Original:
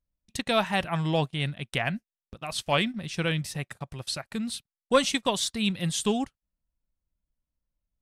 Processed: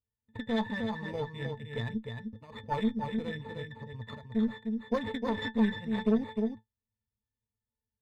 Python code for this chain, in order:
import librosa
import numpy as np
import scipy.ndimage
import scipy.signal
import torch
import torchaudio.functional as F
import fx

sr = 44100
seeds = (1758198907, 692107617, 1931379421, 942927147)

y = fx.spec_quant(x, sr, step_db=15)
y = np.repeat(y[::8], 8)[:len(y)]
y = fx.octave_resonator(y, sr, note='A', decay_s=0.13)
y = y + 10.0 ** (-5.0 / 20.0) * np.pad(y, (int(305 * sr / 1000.0), 0))[:len(y)]
y = fx.cheby_harmonics(y, sr, harmonics=(4,), levels_db=(-17,), full_scale_db=-21.5)
y = y * 10.0 ** (5.5 / 20.0)